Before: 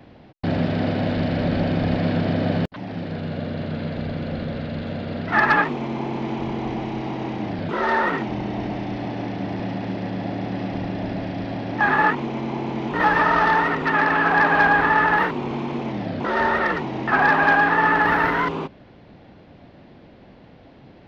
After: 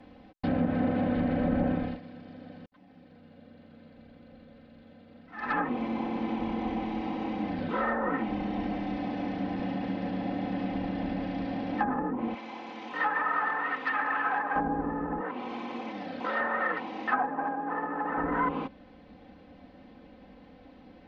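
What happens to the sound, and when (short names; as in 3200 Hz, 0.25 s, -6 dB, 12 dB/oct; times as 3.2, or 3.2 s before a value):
1.69–5.69 dip -19.5 dB, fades 0.31 s
12.34–14.56 HPF 1200 Hz 6 dB/oct
15.2–18.18 HPF 540 Hz 6 dB/oct
whole clip: treble ducked by the level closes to 490 Hz, closed at -14 dBFS; high shelf 5000 Hz -4.5 dB; comb 3.9 ms, depth 79%; gain -7 dB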